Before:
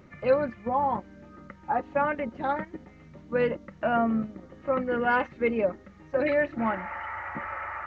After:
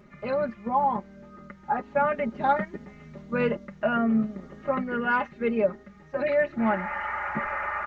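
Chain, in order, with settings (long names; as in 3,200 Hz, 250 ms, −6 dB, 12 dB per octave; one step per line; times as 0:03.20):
speech leveller within 4 dB 0.5 s
comb filter 4.9 ms, depth 74%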